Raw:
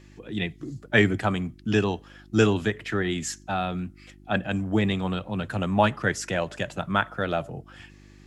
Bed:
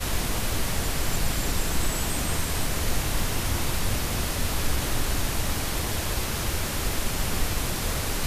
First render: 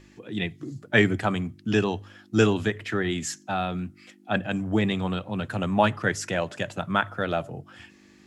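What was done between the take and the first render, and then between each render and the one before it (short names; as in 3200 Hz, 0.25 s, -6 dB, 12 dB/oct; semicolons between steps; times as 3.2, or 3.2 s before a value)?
de-hum 50 Hz, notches 3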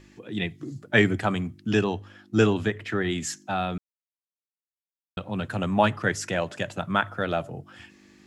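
1.81–3.01 high shelf 4100 Hz -5 dB; 3.78–5.17 mute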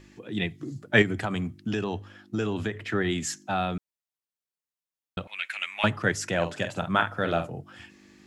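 1.02–2.78 compressor, threshold -24 dBFS; 5.27–5.84 resonant high-pass 2200 Hz, resonance Q 9.2; 6.35–7.48 doubler 47 ms -8 dB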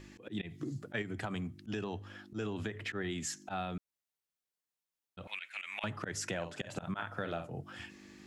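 auto swell 0.121 s; compressor 6:1, threshold -35 dBFS, peak gain reduction 15.5 dB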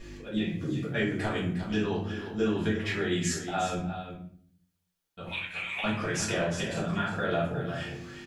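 echo 0.358 s -10 dB; shoebox room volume 69 m³, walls mixed, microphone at 1.7 m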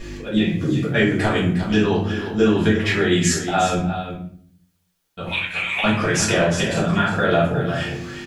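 gain +11 dB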